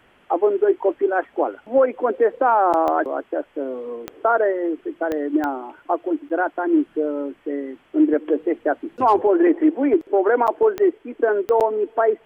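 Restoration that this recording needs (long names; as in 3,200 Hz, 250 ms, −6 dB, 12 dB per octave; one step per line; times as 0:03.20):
click removal
repair the gap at 0:02.73/0:06.29/0:10.47/0:11.60, 8 ms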